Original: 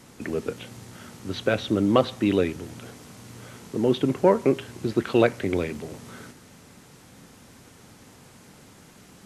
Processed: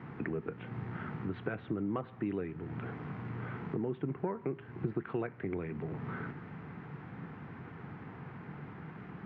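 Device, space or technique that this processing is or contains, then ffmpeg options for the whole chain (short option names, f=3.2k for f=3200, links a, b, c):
bass amplifier: -af "acompressor=threshold=-39dB:ratio=4,highpass=84,equalizer=f=150:t=q:w=4:g=7,equalizer=f=250:t=q:w=4:g=-4,equalizer=f=560:t=q:w=4:g=-10,lowpass=f=2k:w=0.5412,lowpass=f=2k:w=1.3066,volume=5dB"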